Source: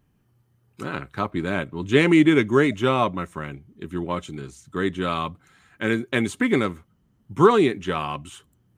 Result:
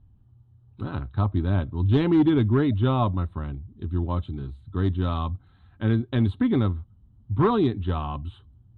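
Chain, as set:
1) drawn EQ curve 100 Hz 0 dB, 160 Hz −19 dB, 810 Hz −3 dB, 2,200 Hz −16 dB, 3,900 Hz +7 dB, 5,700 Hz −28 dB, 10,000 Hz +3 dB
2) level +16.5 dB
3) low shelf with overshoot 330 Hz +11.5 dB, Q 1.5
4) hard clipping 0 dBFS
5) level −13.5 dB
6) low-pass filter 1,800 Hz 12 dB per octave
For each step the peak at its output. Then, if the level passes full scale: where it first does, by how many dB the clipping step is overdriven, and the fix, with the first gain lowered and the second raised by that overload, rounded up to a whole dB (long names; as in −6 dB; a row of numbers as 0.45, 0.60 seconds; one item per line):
−12.5, +4.0, +6.0, 0.0, −13.5, −13.0 dBFS
step 2, 6.0 dB
step 2 +10.5 dB, step 5 −7.5 dB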